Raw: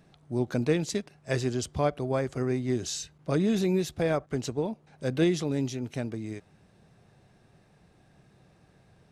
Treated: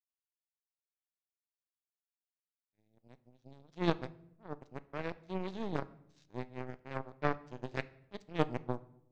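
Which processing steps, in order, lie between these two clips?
played backwards from end to start
gain on a spectral selection 0:02.64–0:03.76, 270–3,300 Hz −9 dB
power curve on the samples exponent 3
high-frequency loss of the air 150 metres
on a send: convolution reverb RT60 0.75 s, pre-delay 6 ms, DRR 15.5 dB
on the sum: level +2 dB

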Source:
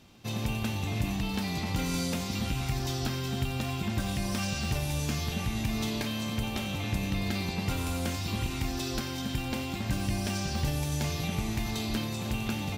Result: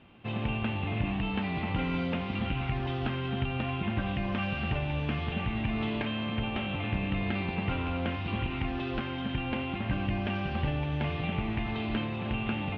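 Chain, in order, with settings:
elliptic low-pass filter 3,000 Hz, stop band 80 dB
low-shelf EQ 140 Hz −3.5 dB
level +2.5 dB

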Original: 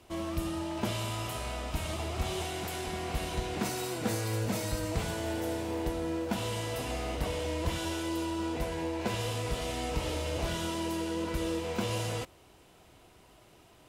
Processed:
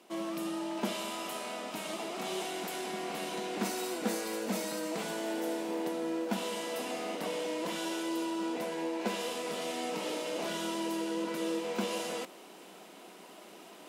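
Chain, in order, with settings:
reversed playback
upward compression, threshold −40 dBFS
reversed playback
elliptic high-pass filter 190 Hz, stop band 50 dB

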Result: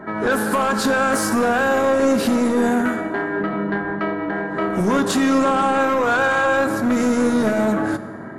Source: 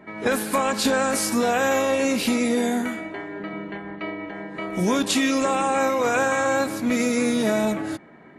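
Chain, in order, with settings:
in parallel at −1 dB: downward compressor, threshold −30 dBFS, peak gain reduction 12.5 dB
on the sum: high shelf with overshoot 1,900 Hz −6.5 dB, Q 3
brickwall limiter −11.5 dBFS, peak gain reduction 5.5 dB
soft clipping −17.5 dBFS, distortion −15 dB
convolution reverb RT60 1.9 s, pre-delay 3 ms, DRR 10.5 dB
level +5 dB

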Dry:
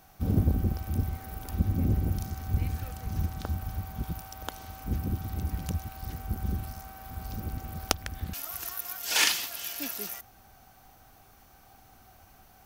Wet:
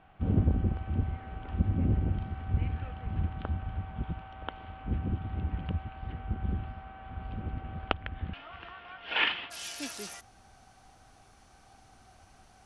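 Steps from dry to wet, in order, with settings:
elliptic low-pass filter 3,100 Hz, stop band 60 dB, from 0:09.50 9,900 Hz

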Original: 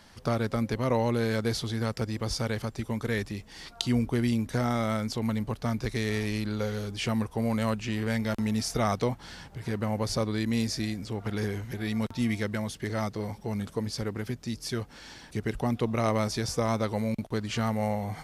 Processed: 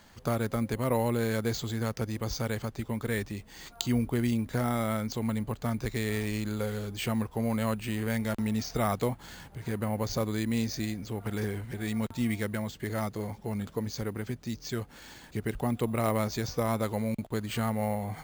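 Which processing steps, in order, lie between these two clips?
bad sample-rate conversion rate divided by 4×, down filtered, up hold
level −1.5 dB

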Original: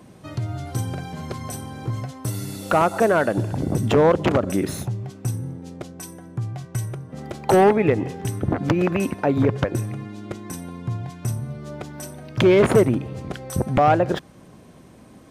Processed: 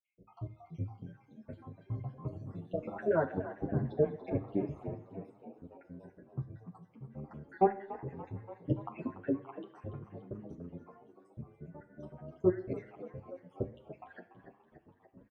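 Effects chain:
time-frequency cells dropped at random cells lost 78%
low-pass filter 1,200 Hz 12 dB per octave
on a send: echo with shifted repeats 288 ms, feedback 61%, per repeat +55 Hz, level −13 dB
on the sum: coupled-rooms reverb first 0.56 s, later 2.9 s, from −22 dB, DRR 9 dB
barber-pole flanger 8.8 ms +1.2 Hz
level −6.5 dB

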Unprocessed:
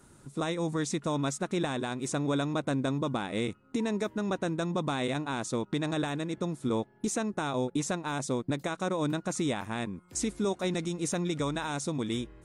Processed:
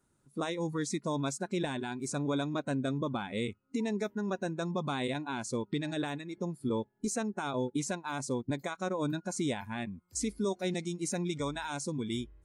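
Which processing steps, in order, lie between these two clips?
noise reduction from a noise print of the clip's start 15 dB
level −2 dB

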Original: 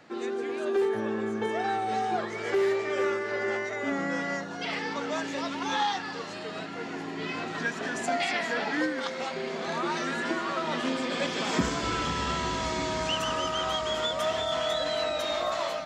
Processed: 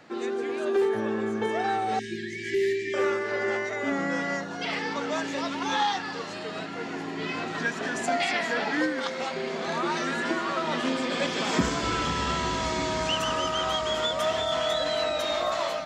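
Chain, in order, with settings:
0:01.99–0:02.94: linear-phase brick-wall band-stop 410–1,600 Hz
level +2 dB

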